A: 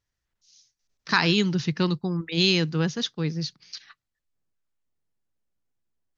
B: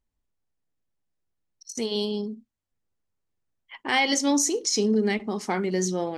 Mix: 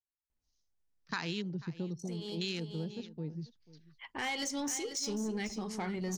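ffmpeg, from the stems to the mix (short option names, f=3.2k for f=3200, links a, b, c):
-filter_complex "[0:a]afwtdn=0.0398,volume=-10.5dB,asplit=3[a][b][c];[b]volume=-21dB[d];[1:a]asubboost=boost=7:cutoff=110,asoftclip=type=tanh:threshold=-20.5dB,adelay=300,volume=-5.5dB,asplit=2[e][f];[f]volume=-11.5dB[g];[c]apad=whole_len=285674[h];[e][h]sidechaincompress=threshold=-45dB:ratio=4:attack=48:release=478[i];[d][g]amix=inputs=2:normalize=0,aecho=0:1:490:1[j];[a][i][j]amix=inputs=3:normalize=0,acompressor=threshold=-36dB:ratio=2"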